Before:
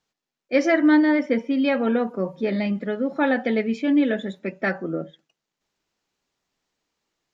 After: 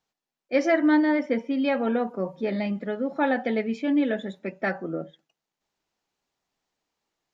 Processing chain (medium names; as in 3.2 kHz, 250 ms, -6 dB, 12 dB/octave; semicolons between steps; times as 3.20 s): peaking EQ 780 Hz +4.5 dB 0.73 oct; trim -4 dB